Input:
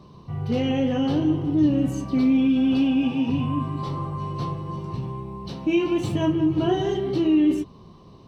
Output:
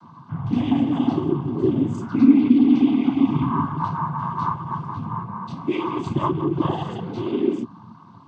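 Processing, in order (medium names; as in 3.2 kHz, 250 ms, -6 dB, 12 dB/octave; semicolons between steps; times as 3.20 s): FFT filter 170 Hz 0 dB, 250 Hz +4 dB, 470 Hz -19 dB, 1 kHz +9 dB, 1.5 kHz -10 dB, 2.2 kHz -4 dB, 3.4 kHz -7 dB, 5.6 kHz -9 dB; noise-vocoded speech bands 16; trim +2 dB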